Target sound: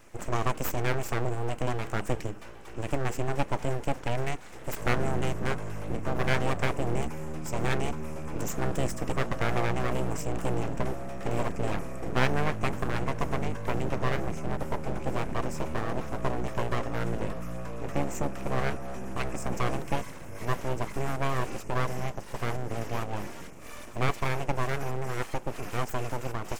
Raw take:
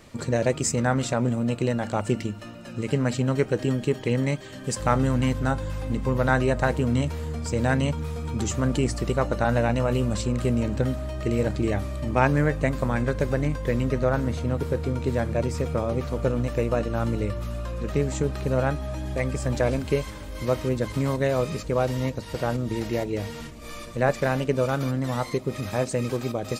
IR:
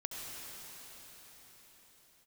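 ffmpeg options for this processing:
-af "asuperstop=centerf=3800:order=8:qfactor=1.6,aeval=exprs='abs(val(0))':c=same,volume=0.75"

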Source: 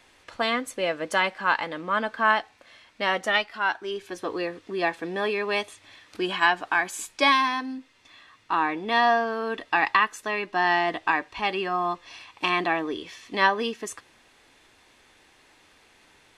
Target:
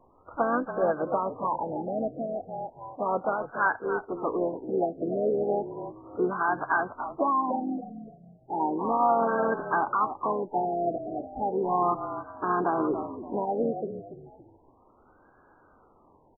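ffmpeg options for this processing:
-filter_complex "[0:a]asplit=4[s0][s1][s2][s3];[s1]adelay=284,afreqshift=-44,volume=0.282[s4];[s2]adelay=568,afreqshift=-88,volume=0.0871[s5];[s3]adelay=852,afreqshift=-132,volume=0.0272[s6];[s0][s4][s5][s6]amix=inputs=4:normalize=0,asplit=4[s7][s8][s9][s10];[s8]asetrate=33038,aresample=44100,atempo=1.33484,volume=0.141[s11];[s9]asetrate=52444,aresample=44100,atempo=0.840896,volume=0.355[s12];[s10]asetrate=58866,aresample=44100,atempo=0.749154,volume=0.178[s13];[s7][s11][s12][s13]amix=inputs=4:normalize=0,alimiter=limit=0.211:level=0:latency=1:release=73,afftfilt=real='re*lt(b*sr/1024,760*pow(1700/760,0.5+0.5*sin(2*PI*0.34*pts/sr)))':imag='im*lt(b*sr/1024,760*pow(1700/760,0.5+0.5*sin(2*PI*0.34*pts/sr)))':win_size=1024:overlap=0.75,volume=1.19"

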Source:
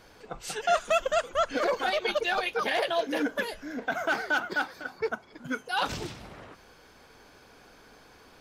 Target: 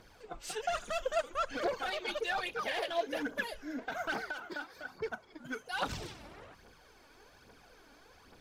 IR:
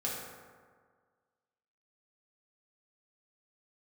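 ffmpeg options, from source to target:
-filter_complex "[0:a]asoftclip=type=tanh:threshold=0.0794,aphaser=in_gain=1:out_gain=1:delay=3.6:decay=0.53:speed=1.2:type=triangular,asettb=1/sr,asplit=3[s0][s1][s2];[s0]atrim=end=4.264[s3];[s1]atrim=start=4.26:end=4.9,asetpts=PTS-STARTPTS,afade=t=in:d=0.004:c=qsin,afade=t=out:st=0.636:d=0.004:c=qsin,acompressor=threshold=0.0282:ratio=6[s4];[s2]atrim=start=4.896[s5];[s3][s4]acrossfade=d=0.004:c1=hsin:c2=qsin[s6];[s6][s5]acrossfade=d=0.004:c1=qsin:c2=hsin,volume=0.473"

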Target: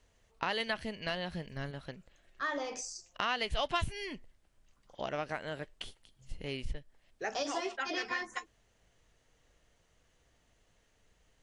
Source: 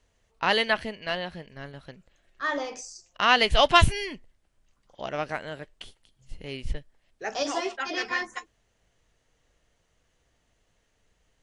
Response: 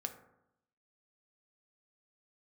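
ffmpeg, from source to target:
-filter_complex "[0:a]asettb=1/sr,asplit=3[s0][s1][s2];[s0]atrim=end=0.604[s3];[s1]atrim=start=0.6:end=1.71,asetpts=PTS-STARTPTS,afade=t=in:d=0.004:c=qsin,afade=t=out:st=1.106:d=0.004:c=qsin,bass=f=250:g=5,treble=f=4000:g=5[s4];[s2]atrim=start=1.706[s5];[s3][s4]acrossfade=d=0.004:c1=hsin:c2=qsin[s6];[s6][s5]acrossfade=d=0.004:c1=qsin:c2=hsin,acompressor=threshold=0.02:ratio=3"

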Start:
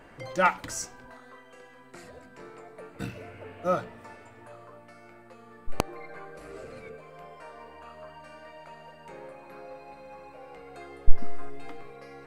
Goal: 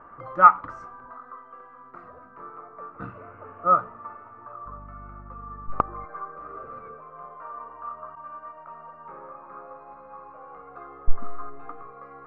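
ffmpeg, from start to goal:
-filter_complex "[0:a]asettb=1/sr,asplit=3[s0][s1][s2];[s0]atrim=end=8.154[s3];[s1]atrim=start=8.15:end=8.72,asetpts=PTS-STARTPTS,afade=t=in:d=0.004:c=qsin,afade=t=out:st=0.566:d=0.004:c=qsin,agate=range=0.0224:threshold=0.00562:ratio=3:detection=peak[s4];[s2]atrim=start=8.716[s5];[s3][s4]acrossfade=d=0.004:c1=hsin:c2=qsin[s6];[s6][s5]acrossfade=d=0.004:c1=qsin:c2=hsin,lowpass=f=1200:t=q:w=12,asettb=1/sr,asplit=3[s7][s8][s9];[s7]atrim=end=4.664[s10];[s8]atrim=start=4.66:end=6.05,asetpts=PTS-STARTPTS,afade=t=in:d=0.004:c=qsin,afade=t=out:st=1.386:d=0.004:c=qsin,aeval=exprs='val(0)+0.0112*(sin(2*PI*50*n/s)+sin(2*PI*2*50*n/s)/2+sin(2*PI*3*50*n/s)/3+sin(2*PI*4*50*n/s)/4+sin(2*PI*5*50*n/s)/5)':c=same[s11];[s9]atrim=start=6.046[s12];[s10][s11]acrossfade=d=0.004:c1=hsin:c2=qsin[s13];[s13][s12]acrossfade=d=0.004:c1=qsin:c2=hsin,volume=0.668"

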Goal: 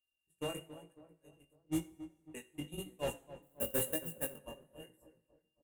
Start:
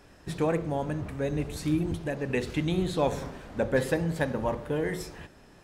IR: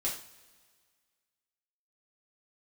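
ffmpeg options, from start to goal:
-filter_complex "[0:a]asplit=2[s0][s1];[s1]acompressor=threshold=0.0158:ratio=12,volume=0.75[s2];[s0][s2]amix=inputs=2:normalize=0,acrossover=split=660[s3][s4];[s3]aeval=exprs='val(0)*(1-0.5/2+0.5/2*cos(2*PI*6.9*n/s))':c=same[s5];[s4]aeval=exprs='val(0)*(1-0.5/2-0.5/2*cos(2*PI*6.9*n/s))':c=same[s6];[s5][s6]amix=inputs=2:normalize=0,aeval=exprs='val(0)+0.0178*sin(2*PI*2800*n/s)':c=same,agate=range=0.00398:threshold=0.0631:ratio=16:detection=peak,asoftclip=type=tanh:threshold=0.0596,asettb=1/sr,asplit=3[s7][s8][s9];[s7]atrim=end=1.534[s10];[s8]atrim=start=1.53:end=2.32,asetpts=PTS-STARTPTS,afade=t=in:d=0.004:c=qsin,afade=t=out:st=0.786:d=0.004:c=qsin,adynamicsmooth=sensitivity=7.5:basefreq=630[s11];[s9]atrim=start=2.316[s12];[s10][s11]acrossfade=d=0.004:c1=hsin:c2=qsin[s13];[s13][s12]acrossfade=d=0.004:c1=qsin:c2=hsin,asplit=2[s14][s15];[1:a]atrim=start_sample=2205[s16];[s15][s16]afir=irnorm=-1:irlink=0,volume=0.237[s17];[s14][s17]amix=inputs=2:normalize=0,asplit=3[s18][s19][s20];[s18]afade=t=out:st=3.42:d=0.02[s21];[s19]acrusher=bits=6:mode=log:mix=0:aa=0.000001,afade=t=in:st=3.42:d=0.02,afade=t=out:st=4.35:d=0.02[s22];[s20]afade=t=in:st=4.35:d=0.02[s23];[s21][s22][s23]amix=inputs=3:normalize=0,aexciter=amount=11.1:drive=9:freq=7500,asplit=2[s24][s25];[s25]adelay=274,lowpass=f=1500:p=1,volume=0.2,asplit=2[s26][s27];[s27]adelay=274,lowpass=f=1500:p=1,volume=0.51,asplit=2[s28][s29];[s29]adelay=274,lowpass=f=1500:p=1,volume=0.51,asplit=2[s30][s31];[s31]adelay=274,lowpass=f=1500:p=1,volume=0.51,asplit=2[s32][s33];[s33]adelay=274,lowpass=f=1500:p=1,volume=0.51[s34];[s24][s26][s28][s30][s32][s34]amix=inputs=6:normalize=0,flanger=delay=16:depth=5.5:speed=1,volume=0.631"

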